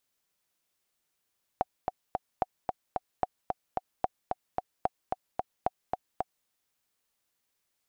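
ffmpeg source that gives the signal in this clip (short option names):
-f lavfi -i "aevalsrc='pow(10,(-12.5-3.5*gte(mod(t,3*60/222),60/222))/20)*sin(2*PI*744*mod(t,60/222))*exp(-6.91*mod(t,60/222)/0.03)':d=4.86:s=44100"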